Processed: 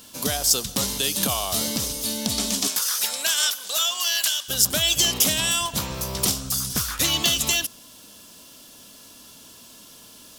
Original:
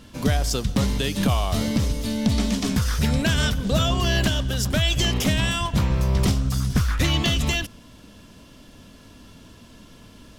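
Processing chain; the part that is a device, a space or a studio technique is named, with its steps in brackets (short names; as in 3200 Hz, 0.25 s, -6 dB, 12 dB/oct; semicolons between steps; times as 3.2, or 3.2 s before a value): turntable without a phono preamp (RIAA curve recording; white noise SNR 34 dB); 2.67–4.48 HPF 570 Hz -> 1500 Hz 12 dB/oct; bell 2000 Hz -6 dB 0.82 oct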